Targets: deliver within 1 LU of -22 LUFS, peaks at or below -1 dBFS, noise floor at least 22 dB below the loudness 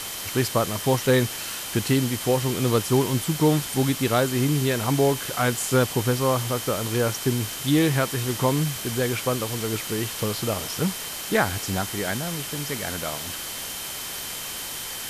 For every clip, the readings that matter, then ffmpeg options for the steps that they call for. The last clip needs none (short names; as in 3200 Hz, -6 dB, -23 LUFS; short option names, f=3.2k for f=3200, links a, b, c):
steady tone 3100 Hz; tone level -41 dBFS; noise floor -33 dBFS; noise floor target -47 dBFS; loudness -24.5 LUFS; peak -7.5 dBFS; loudness target -22.0 LUFS
-> -af "bandreject=f=3.1k:w=30"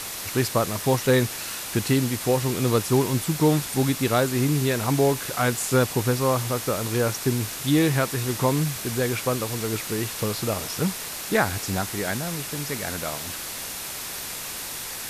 steady tone none; noise floor -34 dBFS; noise floor target -47 dBFS
-> -af "afftdn=nr=13:nf=-34"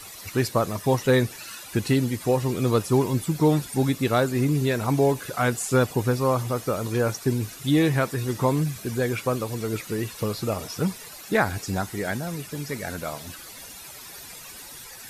noise floor -42 dBFS; noise floor target -47 dBFS
-> -af "afftdn=nr=6:nf=-42"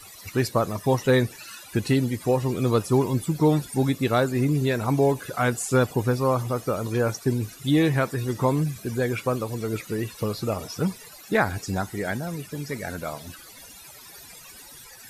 noise floor -46 dBFS; noise floor target -47 dBFS
-> -af "afftdn=nr=6:nf=-46"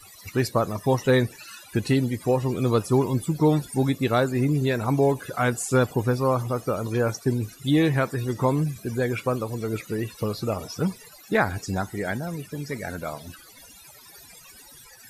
noise floor -49 dBFS; loudness -25.0 LUFS; peak -8.0 dBFS; loudness target -22.0 LUFS
-> -af "volume=3dB"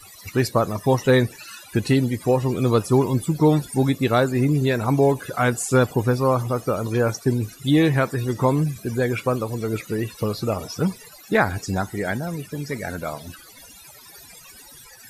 loudness -22.0 LUFS; peak -5.0 dBFS; noise floor -46 dBFS